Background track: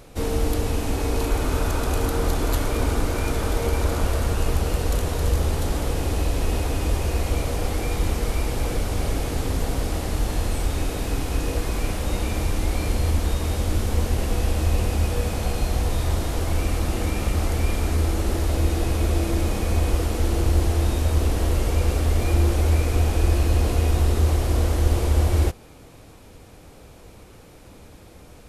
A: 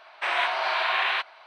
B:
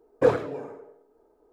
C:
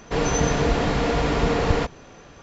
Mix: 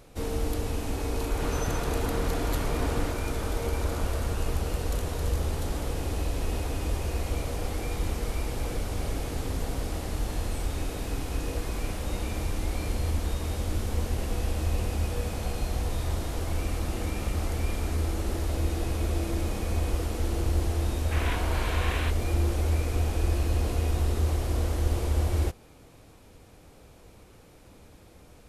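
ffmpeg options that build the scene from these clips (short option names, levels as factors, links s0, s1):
-filter_complex "[0:a]volume=0.473[s0];[3:a]atrim=end=2.42,asetpts=PTS-STARTPTS,volume=0.224,afade=t=in:d=0.004:c=hsin,afade=t=out:st=2.416:d=0.004:c=hsin,adelay=1270[s1];[1:a]atrim=end=1.46,asetpts=PTS-STARTPTS,volume=0.316,afade=t=in:d=0.004:c=hsin,afade=t=out:st=1.456:d=0.004:c=hsin,adelay=20890[s2];[s0][s1][s2]amix=inputs=3:normalize=0"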